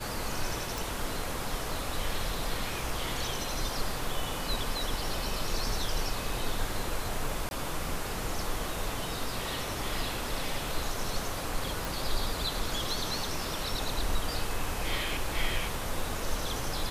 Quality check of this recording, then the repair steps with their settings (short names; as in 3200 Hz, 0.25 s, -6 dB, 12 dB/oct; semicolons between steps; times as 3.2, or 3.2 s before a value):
0.78 pop
7.49–7.51 gap 21 ms
11.85 pop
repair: de-click; interpolate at 7.49, 21 ms